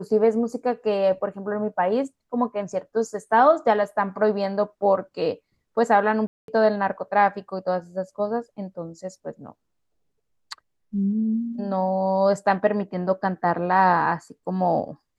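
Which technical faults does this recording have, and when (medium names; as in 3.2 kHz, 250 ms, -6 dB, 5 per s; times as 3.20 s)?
6.27–6.48 s: dropout 212 ms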